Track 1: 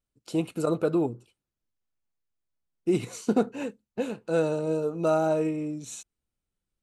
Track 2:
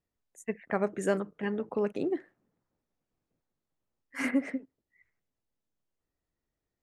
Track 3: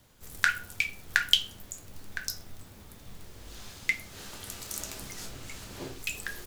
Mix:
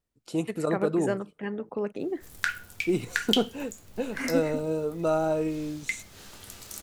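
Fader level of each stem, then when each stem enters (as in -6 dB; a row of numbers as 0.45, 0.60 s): -1.5, -1.0, -3.5 dB; 0.00, 0.00, 2.00 s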